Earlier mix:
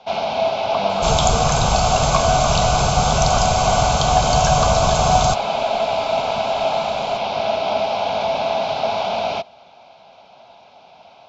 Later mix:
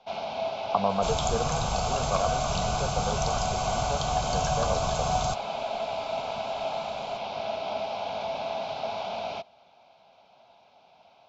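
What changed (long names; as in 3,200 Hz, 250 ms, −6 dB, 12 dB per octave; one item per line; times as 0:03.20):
first sound −11.5 dB
second sound −11.5 dB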